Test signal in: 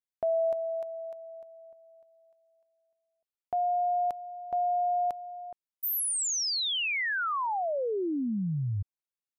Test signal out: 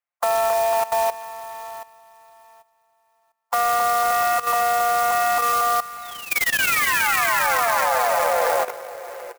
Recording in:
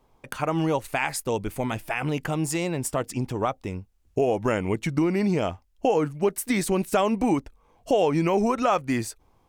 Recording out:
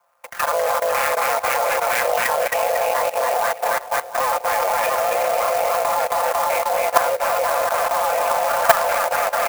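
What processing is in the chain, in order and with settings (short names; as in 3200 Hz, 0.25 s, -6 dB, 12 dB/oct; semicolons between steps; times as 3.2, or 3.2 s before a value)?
cycle switcher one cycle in 3, inverted; mistuned SSB +240 Hz 310–2300 Hz; comb 5.8 ms, depth 81%; spectral noise reduction 6 dB; in parallel at +0.5 dB: compressor 8:1, threshold -30 dBFS; on the sum: soft clip -6.5 dBFS; on a send: bouncing-ball echo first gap 0.27 s, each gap 0.85×, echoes 5; on the sum: level quantiser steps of 15 dB; maximiser +10.5 dB; clock jitter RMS 0.044 ms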